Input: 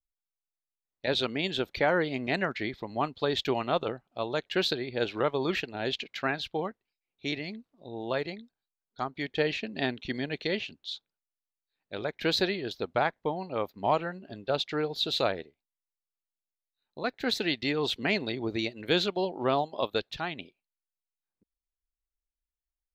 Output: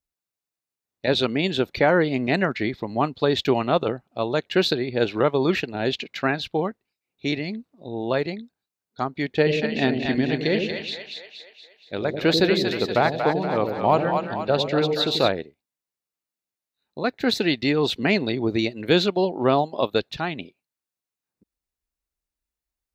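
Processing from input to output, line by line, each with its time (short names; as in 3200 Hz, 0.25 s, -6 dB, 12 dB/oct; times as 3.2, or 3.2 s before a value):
9.29–15.29 split-band echo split 570 Hz, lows 90 ms, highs 0.236 s, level -4.5 dB
whole clip: HPF 130 Hz 6 dB/oct; low shelf 350 Hz +8.5 dB; notch 3200 Hz, Q 17; gain +5 dB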